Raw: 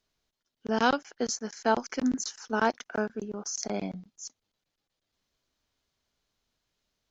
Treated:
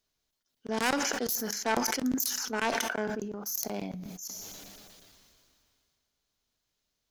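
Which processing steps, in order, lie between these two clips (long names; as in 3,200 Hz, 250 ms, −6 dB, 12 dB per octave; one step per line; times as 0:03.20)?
phase distortion by the signal itself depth 0.24 ms
high-shelf EQ 6,200 Hz +9.5 dB
coupled-rooms reverb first 0.57 s, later 3.2 s, from −26 dB, DRR 19.5 dB
level that may fall only so fast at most 23 dB per second
level −4 dB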